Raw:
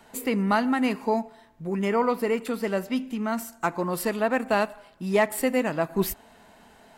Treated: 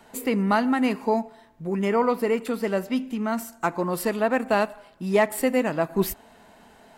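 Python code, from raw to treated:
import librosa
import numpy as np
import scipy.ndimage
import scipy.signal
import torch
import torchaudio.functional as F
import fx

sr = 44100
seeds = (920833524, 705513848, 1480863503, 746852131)

y = fx.peak_eq(x, sr, hz=400.0, db=2.0, octaves=2.8)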